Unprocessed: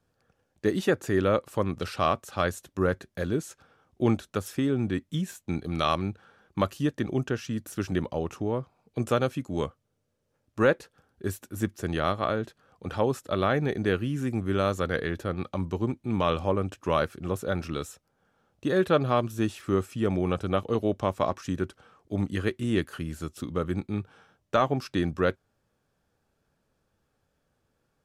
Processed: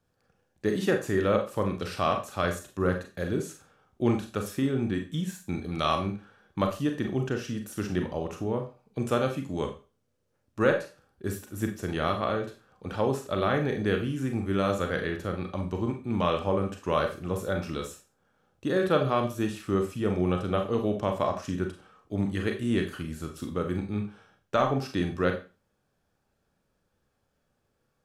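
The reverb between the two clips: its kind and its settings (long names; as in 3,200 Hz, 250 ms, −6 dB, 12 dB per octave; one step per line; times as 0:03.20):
four-comb reverb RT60 0.32 s, combs from 30 ms, DRR 4 dB
level −2 dB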